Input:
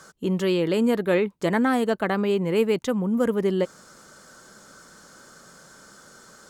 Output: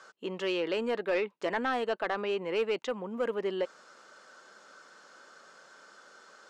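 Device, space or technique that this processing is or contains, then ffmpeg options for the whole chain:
intercom: -af "highpass=460,lowpass=4.3k,equalizer=f=2.7k:t=o:w=0.22:g=5,asoftclip=type=tanh:threshold=-17.5dB,volume=-3dB"

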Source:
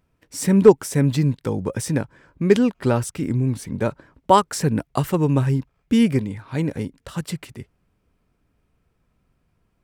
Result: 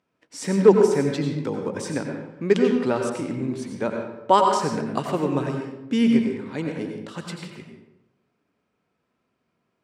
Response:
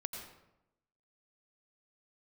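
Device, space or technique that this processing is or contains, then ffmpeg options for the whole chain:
supermarket ceiling speaker: -filter_complex "[0:a]highpass=240,lowpass=6.7k[a];[1:a]atrim=start_sample=2205[b];[a][b]afir=irnorm=-1:irlink=0"

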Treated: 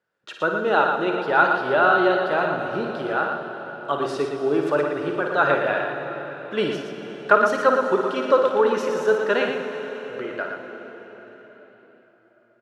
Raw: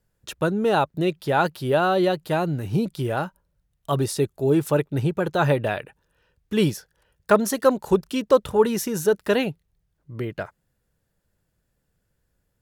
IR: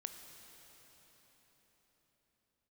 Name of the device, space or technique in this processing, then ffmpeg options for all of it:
station announcement: -filter_complex "[0:a]highpass=350,lowpass=3.6k,equalizer=f=1.4k:t=o:w=0.44:g=8,aecho=1:1:55.39|116.6:0.398|0.501[a];[1:a]atrim=start_sample=2205[b];[a][b]afir=irnorm=-1:irlink=0,volume=3.5dB"

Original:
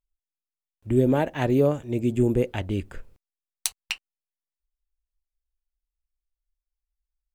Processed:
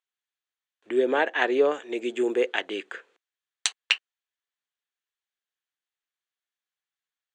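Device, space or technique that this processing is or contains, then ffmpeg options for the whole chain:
phone speaker on a table: -filter_complex "[0:a]asettb=1/sr,asplit=3[a][b][c];[a]atrim=end=0.894[d];[b]atrim=start=0.89:end=1.72,asetpts=PTS-STARTPTS,afade=t=in:d=0.004:c=qsin,afade=t=out:st=0.826:d=0.004:c=qsin,highshelf=f=5.2k:g=-7[e];[c]atrim=start=1.716[f];[d][e]acrossfade=d=0.004:c1=hsin:c2=qsin[g];[g][f]acrossfade=d=0.004:c1=qsin:c2=hsin,highpass=f=430:w=0.5412,highpass=f=430:w=1.3066,equalizer=f=590:t=q:w=4:g=-9,equalizer=f=890:t=q:w=4:g=-4,equalizer=f=1.7k:t=q:w=4:g=6,equalizer=f=3.3k:t=q:w=4:g=4,equalizer=f=5.2k:t=q:w=4:g=-9,lowpass=f=6.8k:w=0.5412,lowpass=f=6.8k:w=1.3066,volume=6.5dB"

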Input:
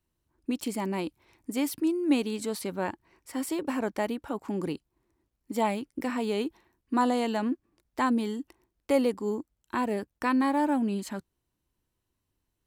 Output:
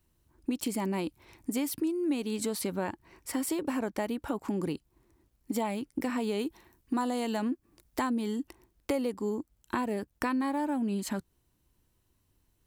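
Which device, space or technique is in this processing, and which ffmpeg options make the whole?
ASMR close-microphone chain: -filter_complex "[0:a]asettb=1/sr,asplit=3[a][b][c];[a]atrim=end=6.394[d];[b]atrim=start=6.39:end=8.07,asetpts=PTS-STARTPTS,afade=t=in:d=0.004:c=qsin,afade=t=out:st=1.676:d=0.004:c=qsin,highshelf=f=5.9k:g=5.5[e];[c]atrim=start=8.066[f];[d][e]acrossfade=d=0.004:c1=hsin:c2=qsin[g];[g][f]acrossfade=d=0.004:c1=qsin:c2=hsin,lowshelf=f=190:g=4.5,acompressor=threshold=-35dB:ratio=4,highshelf=f=7.4k:g=4.5,volume=5.5dB"

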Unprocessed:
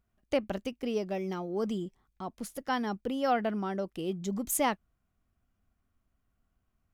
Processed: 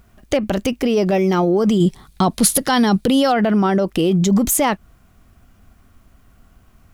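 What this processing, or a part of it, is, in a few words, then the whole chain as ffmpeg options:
loud club master: -filter_complex "[0:a]acompressor=threshold=-32dB:ratio=2,asoftclip=type=hard:threshold=-24dB,alimiter=level_in=33.5dB:limit=-1dB:release=50:level=0:latency=1,asettb=1/sr,asplit=3[a][b][c];[a]atrim=end=1.804[d];[b]atrim=start=1.8:end=3.32,asetpts=PTS-STARTPTS,afade=t=in:d=0.004:c=qsin,afade=t=out:st=1.516:d=0.004:c=qsin,equalizer=f=160:t=o:w=0.67:g=6,equalizer=f=4k:t=o:w=0.67:g=9,equalizer=f=10k:t=o:w=0.67:g=9[e];[c]atrim=start=3.316[f];[d][e]acrossfade=d=0.004:c1=hsin:c2=qsin[g];[g][f]acrossfade=d=0.004:c1=qsin:c2=hsin,volume=-8dB"

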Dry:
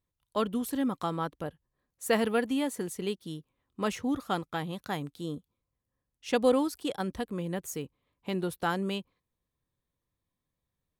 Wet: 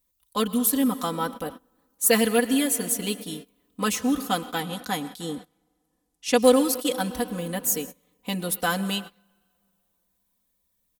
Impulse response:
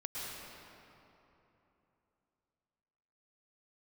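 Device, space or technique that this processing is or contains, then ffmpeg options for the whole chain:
keyed gated reverb: -filter_complex "[0:a]asplit=3[a][b][c];[1:a]atrim=start_sample=2205[d];[b][d]afir=irnorm=-1:irlink=0[e];[c]apad=whole_len=484745[f];[e][f]sidechaingate=range=-24dB:threshold=-43dB:ratio=16:detection=peak,volume=-12.5dB[g];[a][g]amix=inputs=2:normalize=0,asettb=1/sr,asplit=3[h][i][j];[h]atrim=end=4.604[k];[i]atrim=start=4.6:end=6.38,asetpts=PTS-STARTPTS,afade=t=in:d=0.004:c=qsin,afade=t=out:st=1.776:d=0.004:c=qsin,lowpass=11k[l];[j]atrim=start=6.376[m];[k][l]acrossfade=d=0.004:c1=hsin:c2=qsin[n];[n][m]acrossfade=d=0.004:c1=qsin:c2=hsin,aemphasis=mode=production:type=75kf,aecho=1:1:4:0.97"

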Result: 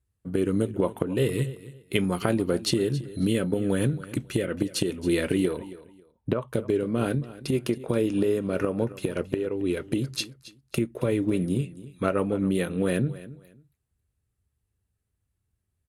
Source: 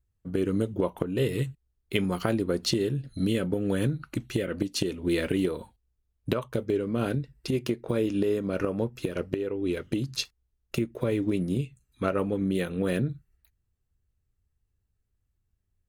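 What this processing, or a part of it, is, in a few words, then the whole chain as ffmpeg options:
budget condenser microphone: -filter_complex "[0:a]lowpass=8.4k,asettb=1/sr,asplit=3[a][b][c];[a]atrim=end=5.574[d];[b]atrim=start=5.57:end=6.48,asetpts=PTS-STARTPTS,afade=t=in:d=0.004:c=qsin,afade=t=out:st=0.906:d=0.004:c=qsin,lowpass=f=1.3k:p=1[e];[c]atrim=start=6.476[f];[d][e]acrossfade=d=0.004:c1=hsin:c2=qsin[g];[g][f]acrossfade=d=0.004:c1=qsin:c2=hsin,highpass=63,highshelf=f=8k:t=q:w=1.5:g=9,aecho=1:1:273|546:0.141|0.0325,volume=2dB"

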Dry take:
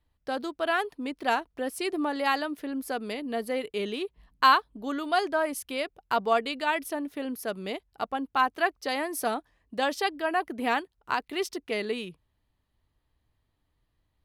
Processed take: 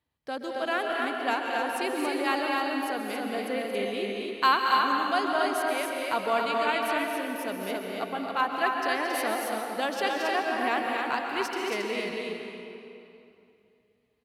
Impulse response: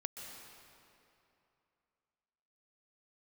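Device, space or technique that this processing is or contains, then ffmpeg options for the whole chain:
stadium PA: -filter_complex "[0:a]highpass=120,equalizer=f=2.3k:t=o:w=0.52:g=3,aecho=1:1:224.5|274.1:0.398|0.631[a];[1:a]atrim=start_sample=2205[b];[a][b]afir=irnorm=-1:irlink=0"

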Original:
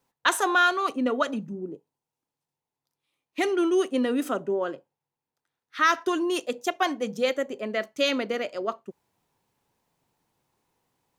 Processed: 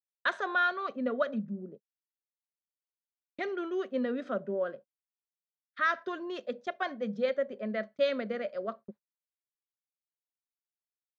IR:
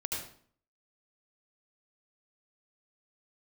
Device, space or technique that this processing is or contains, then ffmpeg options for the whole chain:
guitar cabinet: -af "highpass=97,equalizer=f=210:t=q:w=4:g=10,equalizer=f=310:t=q:w=4:g=-10,equalizer=f=580:t=q:w=4:g=9,equalizer=f=880:t=q:w=4:g=-9,equalizer=f=1.6k:t=q:w=4:g=5,equalizer=f=2.8k:t=q:w=4:g=-8,lowpass=f=4.1k:w=0.5412,lowpass=f=4.1k:w=1.3066,agate=range=-42dB:threshold=-40dB:ratio=16:detection=peak,volume=-8dB"

